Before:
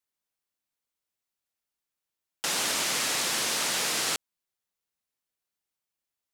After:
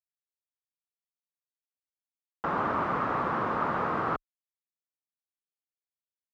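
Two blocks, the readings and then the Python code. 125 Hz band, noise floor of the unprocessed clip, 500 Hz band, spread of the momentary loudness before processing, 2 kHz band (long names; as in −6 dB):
+10.0 dB, below −85 dBFS, +5.0 dB, 4 LU, −4.5 dB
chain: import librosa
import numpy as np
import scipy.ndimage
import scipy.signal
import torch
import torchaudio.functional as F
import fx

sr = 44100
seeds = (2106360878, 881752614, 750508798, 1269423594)

y = fx.lowpass_res(x, sr, hz=1200.0, q=3.7)
y = fx.quant_dither(y, sr, seeds[0], bits=10, dither='none')
y = fx.tilt_eq(y, sr, slope=-3.5)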